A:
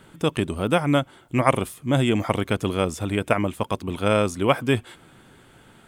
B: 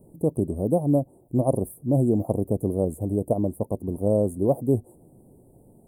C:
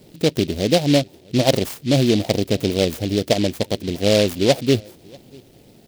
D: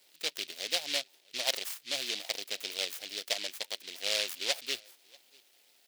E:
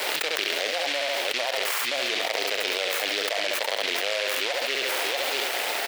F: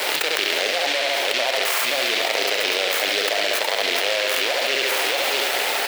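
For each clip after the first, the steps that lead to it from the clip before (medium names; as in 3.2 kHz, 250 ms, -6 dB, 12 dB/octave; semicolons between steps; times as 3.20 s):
inverse Chebyshev band-stop 1.4–5.4 kHz, stop band 50 dB
tilt EQ +1.5 dB/octave; echo from a far wall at 110 m, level -27 dB; delay time shaken by noise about 3.4 kHz, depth 0.11 ms; trim +7.5 dB
high-pass 1.4 kHz 12 dB/octave; trim -6.5 dB
three-band isolator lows -17 dB, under 410 Hz, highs -15 dB, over 2.2 kHz; feedback delay 69 ms, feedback 24%, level -8.5 dB; level flattener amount 100%; trim +6 dB
reverberation RT60 3.6 s, pre-delay 28 ms, DRR 6 dB; trim +4.5 dB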